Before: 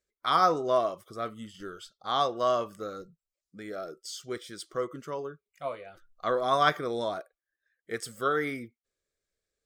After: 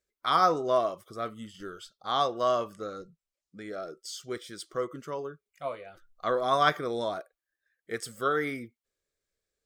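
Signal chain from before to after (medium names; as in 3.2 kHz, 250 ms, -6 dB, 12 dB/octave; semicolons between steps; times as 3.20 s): 2.73–3.99 s: low-pass 9.4 kHz 12 dB/octave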